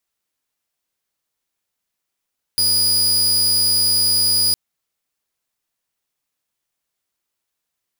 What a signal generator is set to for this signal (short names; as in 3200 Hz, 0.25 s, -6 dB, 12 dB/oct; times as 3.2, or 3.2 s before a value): tone saw 4910 Hz -11.5 dBFS 1.96 s